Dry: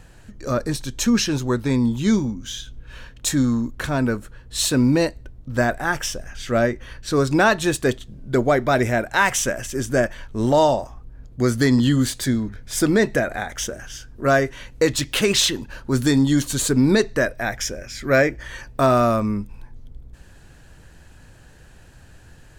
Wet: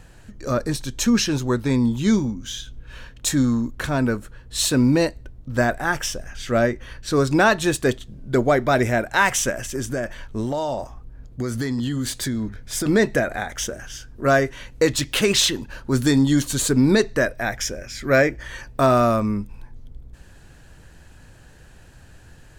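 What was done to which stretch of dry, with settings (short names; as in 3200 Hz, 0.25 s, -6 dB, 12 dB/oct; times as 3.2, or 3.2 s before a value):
9.5–12.86 compressor, threshold -21 dBFS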